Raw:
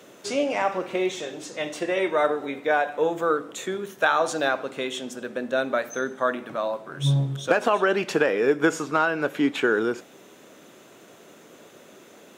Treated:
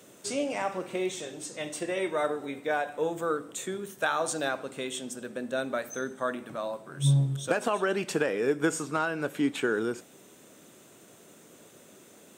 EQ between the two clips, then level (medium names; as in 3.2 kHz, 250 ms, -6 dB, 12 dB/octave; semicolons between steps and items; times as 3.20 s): bass shelf 210 Hz +10 dB; treble shelf 5.5 kHz +9.5 dB; peaking EQ 8.4 kHz +10 dB 0.2 oct; -8.0 dB